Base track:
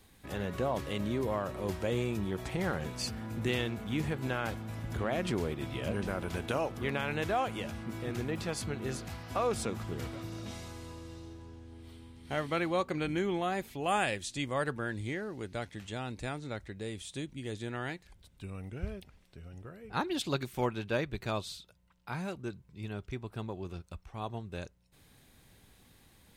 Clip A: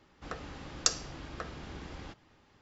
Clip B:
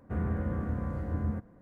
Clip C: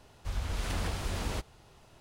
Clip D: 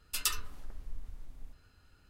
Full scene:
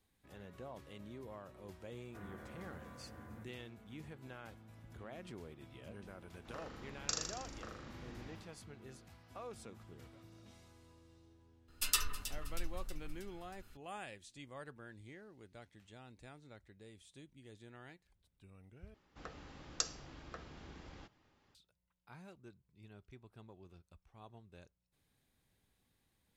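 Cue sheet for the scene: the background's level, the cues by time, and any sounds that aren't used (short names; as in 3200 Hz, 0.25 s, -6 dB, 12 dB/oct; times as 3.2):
base track -17.5 dB
2.04 add B -12 dB + tilt +4 dB/oct
6.23 add A -12 dB + flutter echo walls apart 6.8 m, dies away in 1.1 s
11.68 add D -1 dB + echo with dull and thin repeats by turns 0.159 s, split 1900 Hz, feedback 72%, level -10 dB
18.94 replace with A -9 dB
not used: C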